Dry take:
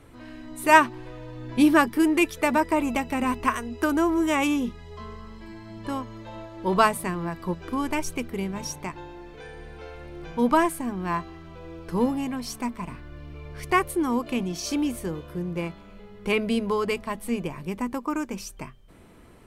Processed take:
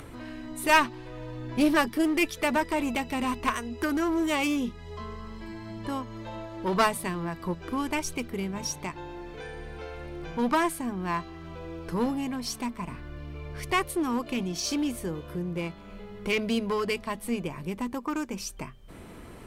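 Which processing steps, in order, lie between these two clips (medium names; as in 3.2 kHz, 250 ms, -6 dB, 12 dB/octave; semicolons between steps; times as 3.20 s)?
dynamic bell 4.2 kHz, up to +5 dB, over -43 dBFS, Q 0.86; in parallel at -2 dB: upward compressor, threshold -24 dBFS; on the sum: one-sided clip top -17 dBFS; trim -7.5 dB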